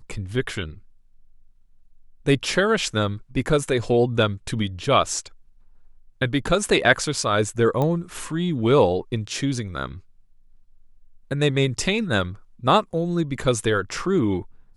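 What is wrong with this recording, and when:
7.82 s: pop -13 dBFS

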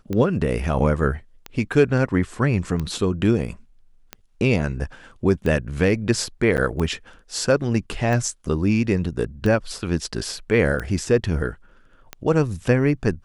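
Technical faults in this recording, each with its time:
tick 45 rpm -15 dBFS
6.57–6.58 s: dropout 9.2 ms

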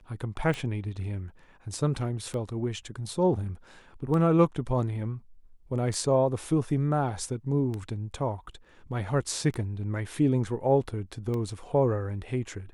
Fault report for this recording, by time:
tick 33 1/3 rpm -22 dBFS

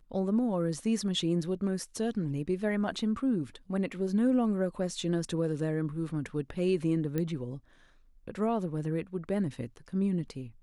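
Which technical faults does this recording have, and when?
7.18 s: pop -19 dBFS

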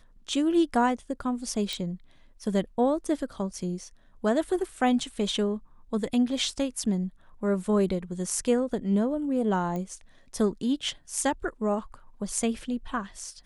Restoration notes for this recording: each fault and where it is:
1.73 s: pop -18 dBFS
9.76 s: pop -22 dBFS

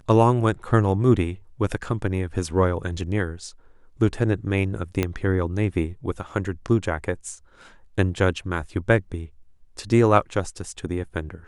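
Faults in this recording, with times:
5.03 s: pop -9 dBFS

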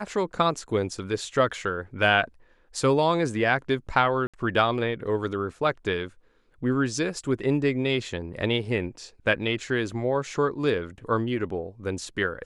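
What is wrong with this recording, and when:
4.27–4.34 s: dropout 66 ms

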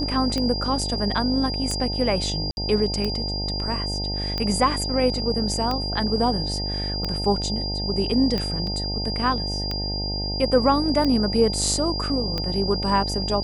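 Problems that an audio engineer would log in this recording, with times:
buzz 50 Hz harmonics 18 -29 dBFS
tick 45 rpm -13 dBFS
whine 4.8 kHz -28 dBFS
2.51–2.57 s: dropout 61 ms
8.67 s: dropout 2.6 ms

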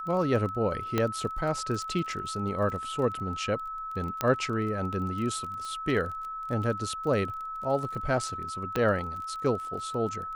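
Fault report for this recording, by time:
crackle 21 per s -35 dBFS
whine 1.3 kHz -34 dBFS
0.98 s: pop -12 dBFS
4.21 s: pop -12 dBFS
5.65 s: pop -27 dBFS
8.76 s: pop -14 dBFS

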